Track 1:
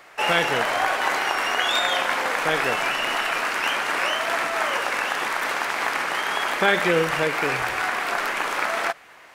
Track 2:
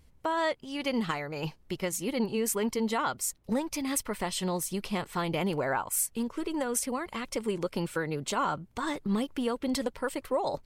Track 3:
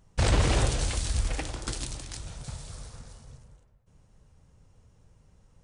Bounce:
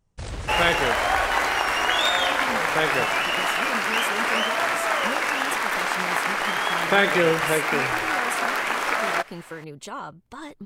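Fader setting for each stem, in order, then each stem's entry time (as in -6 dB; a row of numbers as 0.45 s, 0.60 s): +0.5 dB, -5.5 dB, -10.5 dB; 0.30 s, 1.55 s, 0.00 s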